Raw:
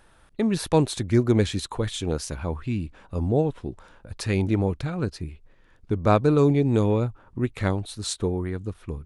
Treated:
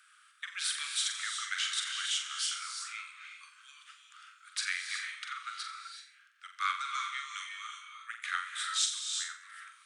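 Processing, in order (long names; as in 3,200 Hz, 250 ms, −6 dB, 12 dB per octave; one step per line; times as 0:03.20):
Butterworth high-pass 1,300 Hz 96 dB per octave
flutter between parallel walls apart 6.9 metres, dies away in 0.38 s
reverb whose tail is shaped and stops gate 370 ms rising, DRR 4 dB
wrong playback speed 48 kHz file played as 44.1 kHz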